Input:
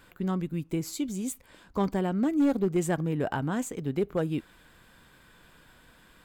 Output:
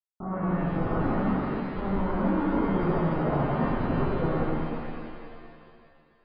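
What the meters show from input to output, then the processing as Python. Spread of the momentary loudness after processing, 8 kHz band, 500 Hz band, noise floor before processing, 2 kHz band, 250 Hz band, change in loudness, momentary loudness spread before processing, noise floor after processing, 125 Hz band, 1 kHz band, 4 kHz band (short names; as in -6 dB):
10 LU, under -40 dB, +2.0 dB, -58 dBFS, +3.5 dB, +1.0 dB, +2.0 dB, 9 LU, -63 dBFS, +4.0 dB, +6.5 dB, -4.0 dB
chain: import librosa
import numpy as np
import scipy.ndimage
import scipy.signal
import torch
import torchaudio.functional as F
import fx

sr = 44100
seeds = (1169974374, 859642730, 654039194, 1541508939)

y = fx.schmitt(x, sr, flips_db=-34.5)
y = fx.brickwall_lowpass(y, sr, high_hz=1500.0)
y = fx.rev_shimmer(y, sr, seeds[0], rt60_s=2.3, semitones=7, shimmer_db=-8, drr_db=-11.5)
y = F.gain(torch.from_numpy(y), -6.0).numpy()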